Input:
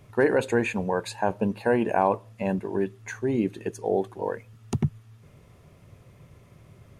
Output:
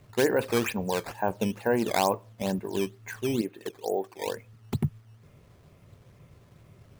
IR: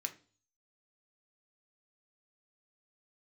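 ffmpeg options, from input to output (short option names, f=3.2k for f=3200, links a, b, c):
-filter_complex "[0:a]asettb=1/sr,asplit=3[a][b][c];[a]atrim=end=3.414[d];[b]atrim=start=3.41:end=4.27,asetpts=PTS-STARTPTS,afade=t=in:d=0.004:c=qsin,afade=t=out:st=0.856:d=0.004:c=qsin,bass=f=250:g=-13,treble=f=4k:g=-13[e];[c]atrim=start=4.266[f];[d][e]acrossfade=d=0.004:c1=hsin:c2=qsin[g];[g][f]acrossfade=d=0.004:c1=qsin:c2=hsin,acrusher=samples=9:mix=1:aa=0.000001:lfo=1:lforange=14.4:lforate=2.2,volume=-2.5dB"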